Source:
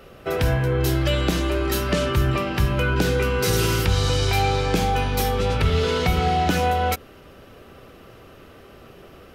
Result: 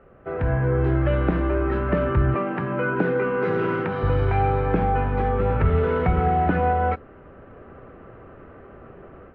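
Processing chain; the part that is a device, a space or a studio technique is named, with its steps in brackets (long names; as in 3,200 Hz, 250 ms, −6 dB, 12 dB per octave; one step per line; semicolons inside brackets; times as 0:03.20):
0:02.34–0:04.03: high-pass filter 160 Hz 24 dB per octave
action camera in a waterproof case (low-pass filter 1,800 Hz 24 dB per octave; automatic gain control gain up to 8 dB; level −6 dB; AAC 96 kbit/s 22,050 Hz)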